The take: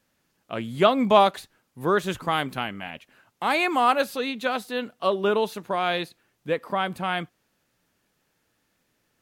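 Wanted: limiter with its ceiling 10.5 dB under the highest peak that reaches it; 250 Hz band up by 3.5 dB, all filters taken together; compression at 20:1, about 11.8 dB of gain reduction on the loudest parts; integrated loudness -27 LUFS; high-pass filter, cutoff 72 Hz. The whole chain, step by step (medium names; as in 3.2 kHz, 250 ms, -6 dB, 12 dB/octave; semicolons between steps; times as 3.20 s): high-pass 72 Hz; peaking EQ 250 Hz +4.5 dB; compression 20:1, threshold -22 dBFS; trim +6.5 dB; peak limiter -16.5 dBFS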